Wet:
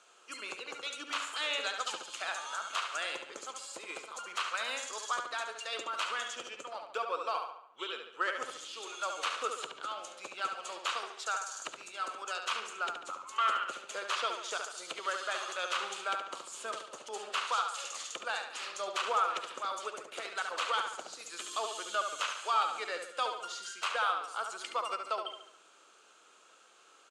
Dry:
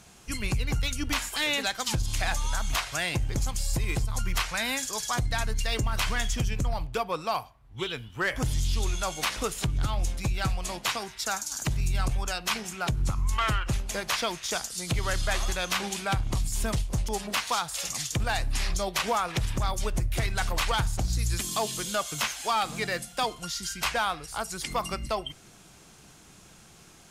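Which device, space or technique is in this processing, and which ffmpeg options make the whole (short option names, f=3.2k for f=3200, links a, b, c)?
phone speaker on a table: -filter_complex "[0:a]asettb=1/sr,asplit=3[a][b][c];[a]atrim=end=11.024[d];[b]atrim=start=11.02:end=11.57,asetpts=PTS-STARTPTS,afade=t=in:d=0.004:c=qsin,afade=t=out:st=0.546:d=0.004:c=qsin,highpass=f=250:w=0.5412,highpass=f=250:w=1.3066[e];[c]atrim=start=11.566[f];[d][e]acrossfade=d=0.004:c1=hsin:c2=qsin[g];[g][f]acrossfade=d=0.004:c1=qsin:c2=hsin,highpass=f=400:w=0.5412,highpass=f=400:w=1.3066,equalizer=f=520:t=q:w=4:g=3,equalizer=f=760:t=q:w=4:g=-4,equalizer=f=1.3k:t=q:w=4:g=10,equalizer=f=2k:t=q:w=4:g=-5,equalizer=f=2.9k:t=q:w=4:g=4,equalizer=f=5.4k:t=q:w=4:g=-7,lowpass=f=8.3k:w=0.5412,lowpass=f=8.3k:w=1.3066,asplit=2[h][i];[i]adelay=71,lowpass=f=4.6k:p=1,volume=-5.5dB,asplit=2[j][k];[k]adelay=71,lowpass=f=4.6k:p=1,volume=0.51,asplit=2[l][m];[m]adelay=71,lowpass=f=4.6k:p=1,volume=0.51,asplit=2[n][o];[o]adelay=71,lowpass=f=4.6k:p=1,volume=0.51,asplit=2[p][q];[q]adelay=71,lowpass=f=4.6k:p=1,volume=0.51,asplit=2[r][s];[s]adelay=71,lowpass=f=4.6k:p=1,volume=0.51[t];[h][j][l][n][p][r][t]amix=inputs=7:normalize=0,volume=-7.5dB"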